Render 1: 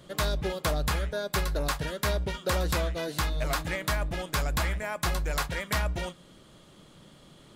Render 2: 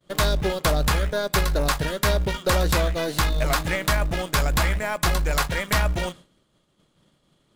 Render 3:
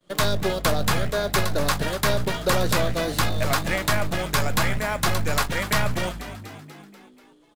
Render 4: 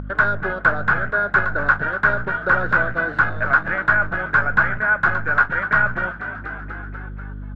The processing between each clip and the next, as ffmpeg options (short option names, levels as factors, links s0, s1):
-filter_complex "[0:a]agate=range=0.0224:threshold=0.00794:ratio=3:detection=peak,asplit=2[s0][s1];[s1]acrusher=bits=4:dc=4:mix=0:aa=0.000001,volume=0.422[s2];[s0][s2]amix=inputs=2:normalize=0,volume=1.78"
-filter_complex "[0:a]acrossover=split=120|1300|1900[s0][s1][s2][s3];[s0]aeval=exprs='abs(val(0))':c=same[s4];[s4][s1][s2][s3]amix=inputs=4:normalize=0,asplit=7[s5][s6][s7][s8][s9][s10][s11];[s6]adelay=243,afreqshift=50,volume=0.224[s12];[s7]adelay=486,afreqshift=100,volume=0.132[s13];[s8]adelay=729,afreqshift=150,volume=0.0776[s14];[s9]adelay=972,afreqshift=200,volume=0.0462[s15];[s10]adelay=1215,afreqshift=250,volume=0.0272[s16];[s11]adelay=1458,afreqshift=300,volume=0.016[s17];[s5][s12][s13][s14][s15][s16][s17]amix=inputs=7:normalize=0"
-af "aeval=exprs='val(0)+0.0158*(sin(2*PI*50*n/s)+sin(2*PI*2*50*n/s)/2+sin(2*PI*3*50*n/s)/3+sin(2*PI*4*50*n/s)/4+sin(2*PI*5*50*n/s)/5)':c=same,lowpass=f=1500:t=q:w=13,acompressor=mode=upward:threshold=0.126:ratio=2.5,volume=0.668"